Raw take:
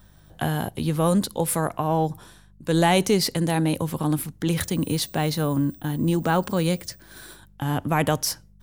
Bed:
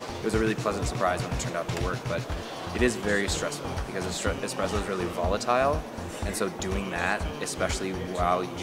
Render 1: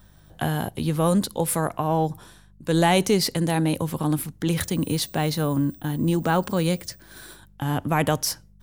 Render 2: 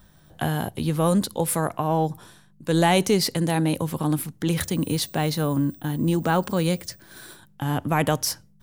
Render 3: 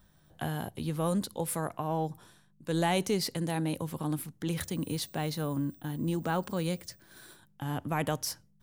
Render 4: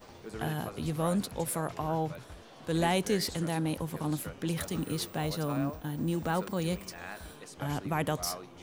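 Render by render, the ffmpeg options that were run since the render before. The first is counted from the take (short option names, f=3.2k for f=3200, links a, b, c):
-af anull
-af "bandreject=f=50:t=h:w=4,bandreject=f=100:t=h:w=4"
-af "volume=-9dB"
-filter_complex "[1:a]volume=-16dB[a];[0:a][a]amix=inputs=2:normalize=0"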